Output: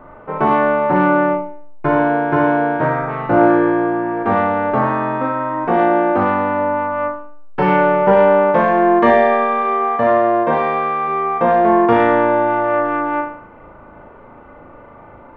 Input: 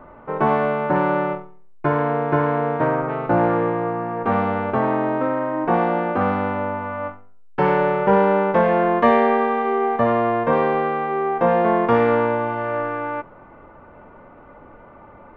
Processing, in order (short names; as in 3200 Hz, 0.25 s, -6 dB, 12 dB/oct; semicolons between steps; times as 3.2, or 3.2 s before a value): 9.62–11.04 low shelf 140 Hz -7.5 dB; flutter echo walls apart 6.4 m, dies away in 0.56 s; gain +2 dB